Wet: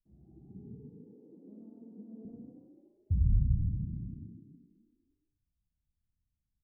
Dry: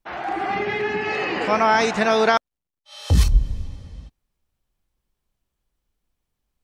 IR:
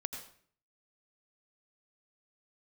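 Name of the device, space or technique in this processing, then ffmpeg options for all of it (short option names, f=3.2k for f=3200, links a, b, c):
club heard from the street: -filter_complex "[0:a]asettb=1/sr,asplit=3[a][b][c];[a]atrim=end=0.764[d];[b]atrim=start=0.76:end=2.25,asetpts=PTS-STARTPTS,afade=t=in:d=0.004:c=qsin,afade=t=out:st=1.486:d=0.004:c=qsin,highpass=f=260:w=0.5412,highpass=f=260:w=1.3066[e];[c]atrim=start=2.246[f];[d][e]acrossfade=d=0.004:c1=hsin:c2=qsin[g];[g][f]acrossfade=d=0.004:c1=qsin:c2=hsin,alimiter=limit=-10.5dB:level=0:latency=1,lowpass=f=200:w=0.5412,lowpass=f=200:w=1.3066[h];[1:a]atrim=start_sample=2205[i];[h][i]afir=irnorm=-1:irlink=0,asplit=9[j][k][l][m][n][o][p][q][r];[k]adelay=144,afreqshift=31,volume=-4.5dB[s];[l]adelay=288,afreqshift=62,volume=-9.5dB[t];[m]adelay=432,afreqshift=93,volume=-14.6dB[u];[n]adelay=576,afreqshift=124,volume=-19.6dB[v];[o]adelay=720,afreqshift=155,volume=-24.6dB[w];[p]adelay=864,afreqshift=186,volume=-29.7dB[x];[q]adelay=1008,afreqshift=217,volume=-34.7dB[y];[r]adelay=1152,afreqshift=248,volume=-39.8dB[z];[j][s][t][u][v][w][x][y][z]amix=inputs=9:normalize=0,volume=-9dB"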